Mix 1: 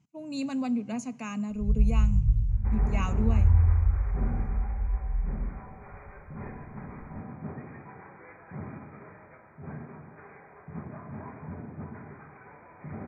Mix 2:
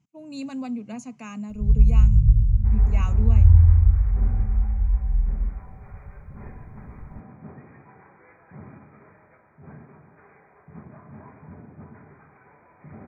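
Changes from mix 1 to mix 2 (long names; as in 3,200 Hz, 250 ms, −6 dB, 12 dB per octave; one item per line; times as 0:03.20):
first sound +7.5 dB
reverb: off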